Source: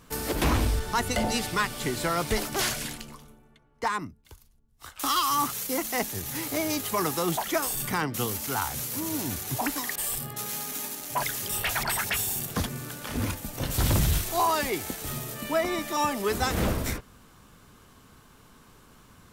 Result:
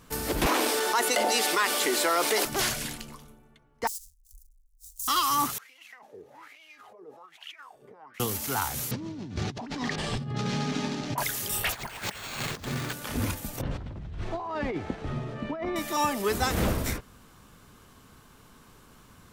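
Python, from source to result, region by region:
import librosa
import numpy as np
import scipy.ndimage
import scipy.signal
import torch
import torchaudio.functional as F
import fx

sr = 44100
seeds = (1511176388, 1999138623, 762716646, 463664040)

y = fx.chain(x, sr, fx.highpass(hz=330.0, slope=24),
    fx.env_flatten(amount_pct=70), at=(0.46, 2.45))
y = fx.chain(y, sr, fx.halfwave_hold(),
    fx.cheby2_bandstop(low_hz=180.0, high_hz=1700.0, order=4, stop_db=70), at=(3.87, 5.08))
y = fx.chain(y, sr, fx.over_compress(threshold_db=-33.0, ratio=-1.0),
    fx.wah_lfo(hz=1.2, low_hz=430.0, high_hz=2900.0, q=7.1), at=(5.58, 8.2))
y = fx.chain(y, sr, fx.lowpass(hz=5000.0, slope=24),
    fx.peak_eq(hz=160.0, db=13.5, octaves=2.3),
    fx.over_compress(threshold_db=-33.0, ratio=-1.0), at=(8.91, 11.18))
y = fx.chain(y, sr, fx.resample_bad(factor=4, down='none', up='hold'),
    fx.over_compress(threshold_db=-34.0, ratio=-0.5), at=(11.72, 12.93))
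y = fx.chain(y, sr, fx.spacing_loss(db_at_10k=39),
    fx.over_compress(threshold_db=-33.0, ratio=-1.0), at=(13.61, 15.76))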